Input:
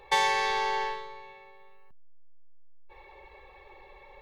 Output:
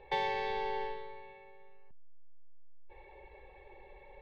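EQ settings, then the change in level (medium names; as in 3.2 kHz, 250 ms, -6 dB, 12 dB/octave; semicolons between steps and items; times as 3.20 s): peaking EQ 1.2 kHz -14.5 dB 0.44 oct; dynamic bell 1.6 kHz, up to -6 dB, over -42 dBFS, Q 0.71; distance through air 370 m; 0.0 dB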